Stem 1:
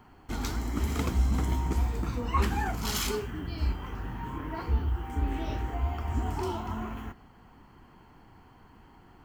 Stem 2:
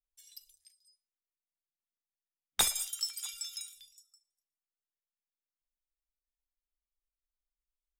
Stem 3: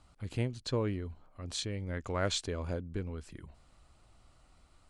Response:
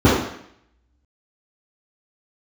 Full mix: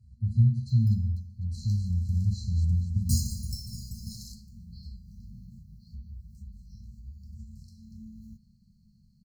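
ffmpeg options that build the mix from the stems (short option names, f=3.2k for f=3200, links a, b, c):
-filter_complex "[0:a]lowpass=f=2.4k:p=1,adelay=1250,volume=3dB[a];[1:a]highshelf=f=11k:g=-2,acrusher=bits=5:dc=4:mix=0:aa=0.000001,adelay=500,volume=-9dB,asplit=2[b][c];[c]volume=-5.5dB[d];[2:a]volume=-15dB,asplit=3[e][f][g];[f]volume=-10dB[h];[g]volume=-5dB[i];[a][e]amix=inputs=2:normalize=0,lowshelf=f=160:g=-11,acompressor=threshold=-38dB:ratio=6,volume=0dB[j];[3:a]atrim=start_sample=2205[k];[d][h]amix=inputs=2:normalize=0[l];[l][k]afir=irnorm=-1:irlink=0[m];[i]aecho=0:1:250|500|750|1000|1250|1500|1750:1|0.47|0.221|0.104|0.0488|0.0229|0.0108[n];[b][j][m][n]amix=inputs=4:normalize=0,afftfilt=real='re*(1-between(b*sr/4096,230,4000))':imag='im*(1-between(b*sr/4096,230,4000))':win_size=4096:overlap=0.75"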